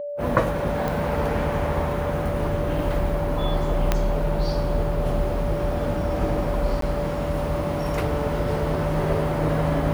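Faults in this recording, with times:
tone 580 Hz -28 dBFS
0.88 pop
3.92 pop -5 dBFS
6.81–6.82 gap 13 ms

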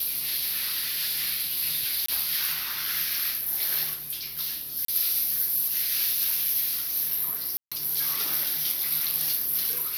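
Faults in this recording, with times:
0.81–1.29 clipped -23.5 dBFS
2.06–2.08 gap 24 ms
4.85–4.88 gap 33 ms
7.57–7.72 gap 0.146 s

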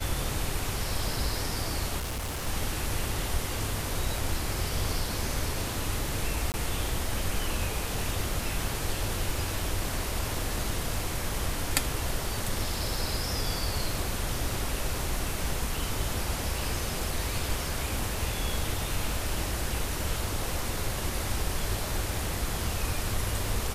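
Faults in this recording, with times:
1.98–2.47 clipped -29.5 dBFS
6.52–6.54 gap 19 ms

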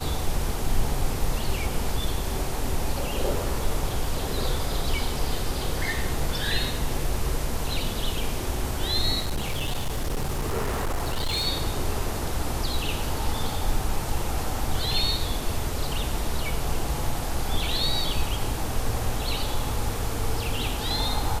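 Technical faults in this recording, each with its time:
9.2–11.48 clipped -22.5 dBFS

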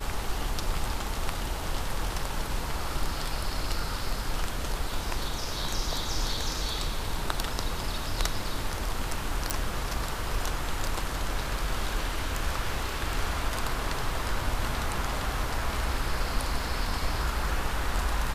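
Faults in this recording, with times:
9.5 pop

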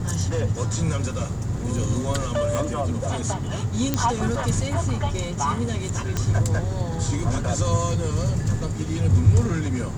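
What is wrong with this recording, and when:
2.55 pop -13 dBFS
3.94 pop -6 dBFS
6.17 pop -11 dBFS

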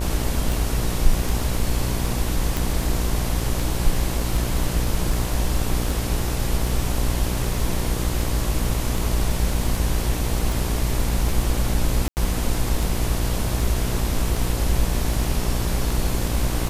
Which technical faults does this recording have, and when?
buzz 60 Hz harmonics 19 -26 dBFS
tick 78 rpm
2.57 pop
12.08–12.17 gap 89 ms

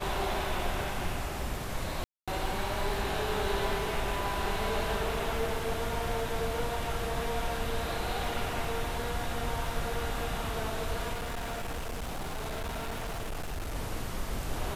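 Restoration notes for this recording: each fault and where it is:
crackle 21/s -37 dBFS
2.04–2.28 gap 0.236 s
11.13–13.76 clipped -32 dBFS

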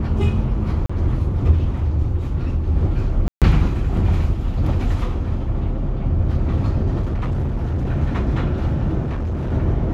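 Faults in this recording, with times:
0.86–0.9 gap 35 ms
3.28–3.42 gap 0.137 s
7.01–7.91 clipped -18 dBFS
9.02–9.52 clipped -20 dBFS

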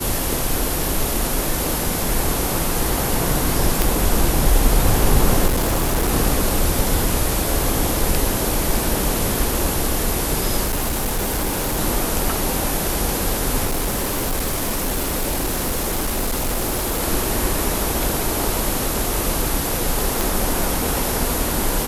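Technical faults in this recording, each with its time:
3.82 pop
5.46–6.12 clipped -15 dBFS
10.64–11.79 clipped -17.5 dBFS
13.65–17.02 clipped -17.5 dBFS
20.21 pop

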